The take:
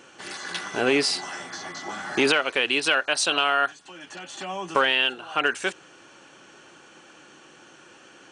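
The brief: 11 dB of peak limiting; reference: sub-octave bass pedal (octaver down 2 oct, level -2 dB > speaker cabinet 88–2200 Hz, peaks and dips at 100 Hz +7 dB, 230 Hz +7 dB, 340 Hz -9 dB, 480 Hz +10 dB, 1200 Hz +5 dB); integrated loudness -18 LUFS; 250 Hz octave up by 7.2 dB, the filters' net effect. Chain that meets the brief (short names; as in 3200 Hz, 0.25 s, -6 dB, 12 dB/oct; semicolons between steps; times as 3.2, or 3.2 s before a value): bell 250 Hz +7.5 dB; limiter -17 dBFS; octaver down 2 oct, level -2 dB; speaker cabinet 88–2200 Hz, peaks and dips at 100 Hz +7 dB, 230 Hz +7 dB, 340 Hz -9 dB, 480 Hz +10 dB, 1200 Hz +5 dB; gain +11.5 dB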